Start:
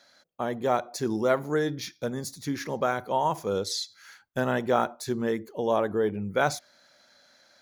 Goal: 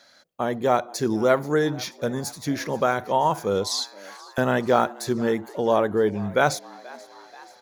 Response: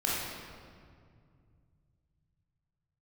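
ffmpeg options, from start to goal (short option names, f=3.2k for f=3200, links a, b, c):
-filter_complex "[0:a]asettb=1/sr,asplit=3[a][b][c];[a]atrim=end=3.674[d];[b]atrim=start=3.67:end=4.38,asetpts=PTS-STARTPTS,afade=t=in:d=0.004:c=qsin,afade=t=out:st=0.706:d=0.004:c=qsin,highpass=f=750:w=0.5412,highpass=f=750:w=1.3066[e];[c]atrim=start=4.376[f];[d][e]acrossfade=d=0.004:c1=hsin:c2=qsin[g];[g][f]acrossfade=d=0.004:c1=qsin:c2=hsin,asplit=6[h][i][j][k][l][m];[i]adelay=482,afreqshift=99,volume=-22dB[n];[j]adelay=964,afreqshift=198,volume=-26dB[o];[k]adelay=1446,afreqshift=297,volume=-30dB[p];[l]adelay=1928,afreqshift=396,volume=-34dB[q];[m]adelay=2410,afreqshift=495,volume=-38.1dB[r];[h][n][o][p][q][r]amix=inputs=6:normalize=0,volume=4.5dB"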